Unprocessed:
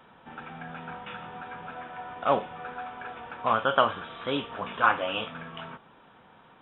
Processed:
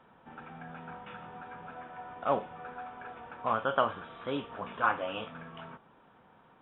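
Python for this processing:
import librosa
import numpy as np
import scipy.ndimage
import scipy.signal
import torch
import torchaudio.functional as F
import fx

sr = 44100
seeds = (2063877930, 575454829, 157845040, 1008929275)

y = fx.high_shelf(x, sr, hz=3000.0, db=-11.5)
y = y * 10.0 ** (-4.0 / 20.0)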